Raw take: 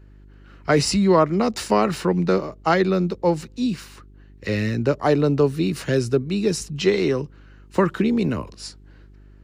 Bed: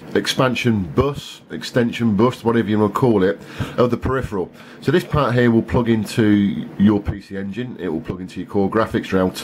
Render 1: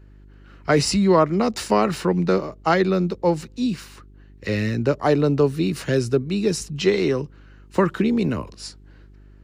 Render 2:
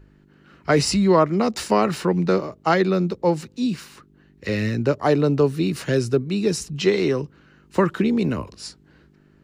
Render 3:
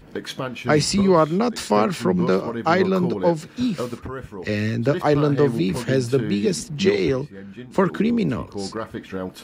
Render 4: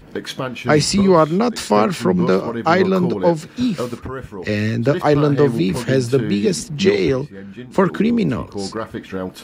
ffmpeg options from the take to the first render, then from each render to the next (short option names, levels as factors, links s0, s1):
-af anull
-af "bandreject=f=50:t=h:w=4,bandreject=f=100:t=h:w=4"
-filter_complex "[1:a]volume=0.251[s0];[0:a][s0]amix=inputs=2:normalize=0"
-af "volume=1.5"